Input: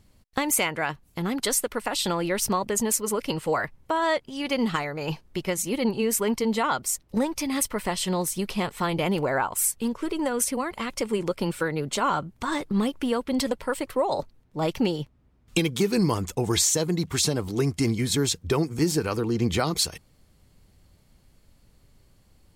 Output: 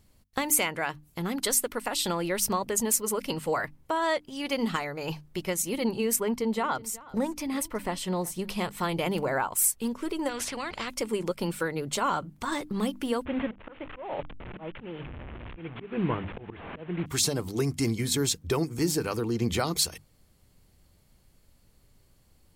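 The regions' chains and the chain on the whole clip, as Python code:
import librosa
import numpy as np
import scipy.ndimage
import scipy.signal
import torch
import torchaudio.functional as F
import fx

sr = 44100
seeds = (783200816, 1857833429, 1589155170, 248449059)

y = fx.chain(x, sr, fx.high_shelf(hz=2800.0, db=-8.0),
    fx.echo_single(ms=371, db=-20.0), at=(6.16, 8.49))
y = fx.chain(y, sr, fx.air_absorb(metres=150.0),
    fx.spectral_comp(ratio=2.0), at=(10.29, 10.88))
y = fx.chain(y, sr, fx.delta_mod(bps=16000, step_db=-31.0),
    fx.auto_swell(attack_ms=273.0), at=(13.25, 17.06))
y = fx.high_shelf(y, sr, hz=10000.0, db=7.0)
y = fx.hum_notches(y, sr, base_hz=50, count=6)
y = y * librosa.db_to_amplitude(-3.0)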